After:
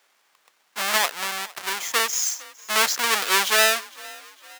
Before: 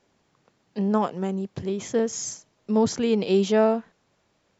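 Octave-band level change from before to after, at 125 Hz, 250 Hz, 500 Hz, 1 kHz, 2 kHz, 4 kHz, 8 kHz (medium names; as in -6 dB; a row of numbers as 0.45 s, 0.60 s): under -20 dB, -19.0 dB, -7.5 dB, +5.5 dB, +18.0 dB, +15.0 dB, no reading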